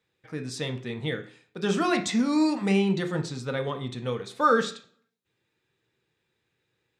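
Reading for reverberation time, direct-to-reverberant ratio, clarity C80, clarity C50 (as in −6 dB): 0.45 s, 5.0 dB, 17.0 dB, 12.5 dB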